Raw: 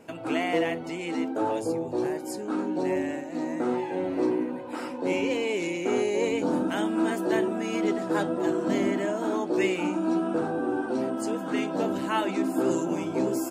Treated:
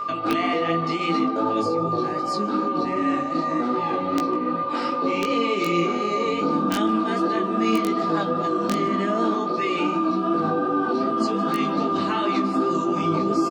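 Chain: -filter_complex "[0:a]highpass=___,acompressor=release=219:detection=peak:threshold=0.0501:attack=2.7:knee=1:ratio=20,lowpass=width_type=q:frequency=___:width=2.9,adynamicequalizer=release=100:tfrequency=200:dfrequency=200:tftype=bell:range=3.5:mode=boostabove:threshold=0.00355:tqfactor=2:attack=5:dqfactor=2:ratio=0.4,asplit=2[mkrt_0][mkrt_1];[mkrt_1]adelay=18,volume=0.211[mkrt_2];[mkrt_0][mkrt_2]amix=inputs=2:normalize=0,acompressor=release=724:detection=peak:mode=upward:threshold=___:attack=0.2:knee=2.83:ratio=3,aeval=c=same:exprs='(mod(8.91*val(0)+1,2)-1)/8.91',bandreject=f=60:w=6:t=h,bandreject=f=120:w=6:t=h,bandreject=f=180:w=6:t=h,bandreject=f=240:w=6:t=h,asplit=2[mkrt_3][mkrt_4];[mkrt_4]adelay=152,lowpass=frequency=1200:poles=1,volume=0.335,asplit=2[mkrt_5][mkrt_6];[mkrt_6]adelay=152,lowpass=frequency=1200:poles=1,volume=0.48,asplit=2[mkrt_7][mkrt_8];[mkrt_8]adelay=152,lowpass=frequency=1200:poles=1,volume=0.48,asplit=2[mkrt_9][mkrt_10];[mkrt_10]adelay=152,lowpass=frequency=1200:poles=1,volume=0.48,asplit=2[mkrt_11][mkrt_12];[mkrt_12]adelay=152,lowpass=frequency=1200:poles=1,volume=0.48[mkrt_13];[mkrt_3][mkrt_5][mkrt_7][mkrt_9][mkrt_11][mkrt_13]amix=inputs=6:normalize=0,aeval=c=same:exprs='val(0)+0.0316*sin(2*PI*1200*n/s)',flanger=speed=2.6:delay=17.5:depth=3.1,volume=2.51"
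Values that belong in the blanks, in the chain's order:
63, 4400, 0.00891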